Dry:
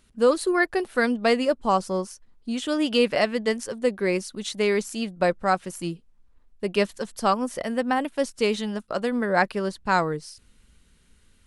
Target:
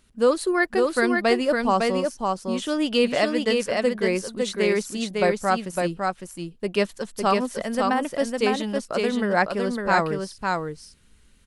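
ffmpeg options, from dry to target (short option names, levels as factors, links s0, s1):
-af "aecho=1:1:556:0.668"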